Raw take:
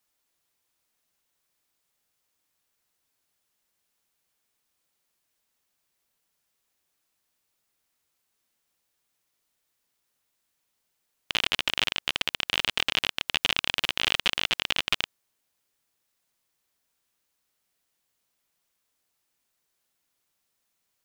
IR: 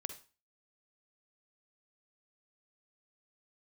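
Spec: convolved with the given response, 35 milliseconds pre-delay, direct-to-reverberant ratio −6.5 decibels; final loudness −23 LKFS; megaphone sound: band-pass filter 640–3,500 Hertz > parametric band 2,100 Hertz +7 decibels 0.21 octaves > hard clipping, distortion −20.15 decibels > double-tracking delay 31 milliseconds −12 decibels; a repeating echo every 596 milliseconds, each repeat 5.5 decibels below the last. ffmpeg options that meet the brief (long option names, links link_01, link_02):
-filter_complex "[0:a]aecho=1:1:596|1192|1788|2384|2980|3576|4172:0.531|0.281|0.149|0.079|0.0419|0.0222|0.0118,asplit=2[link_01][link_02];[1:a]atrim=start_sample=2205,adelay=35[link_03];[link_02][link_03]afir=irnorm=-1:irlink=0,volume=8.5dB[link_04];[link_01][link_04]amix=inputs=2:normalize=0,highpass=640,lowpass=3500,equalizer=frequency=2100:width_type=o:width=0.21:gain=7,asoftclip=type=hard:threshold=-4.5dB,asplit=2[link_05][link_06];[link_06]adelay=31,volume=-12dB[link_07];[link_05][link_07]amix=inputs=2:normalize=0,volume=-3.5dB"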